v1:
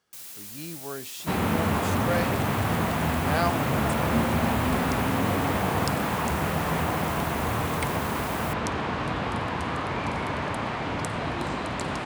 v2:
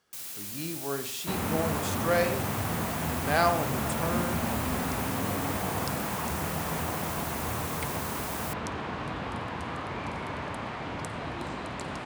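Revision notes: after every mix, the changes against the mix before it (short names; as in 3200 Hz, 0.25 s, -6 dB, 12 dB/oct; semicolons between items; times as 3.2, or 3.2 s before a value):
second sound -7.0 dB; reverb: on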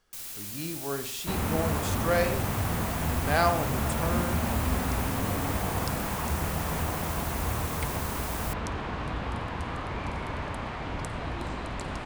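master: remove HPF 110 Hz 12 dB/oct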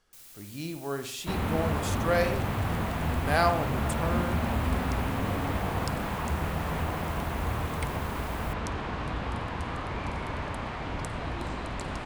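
first sound -11.0 dB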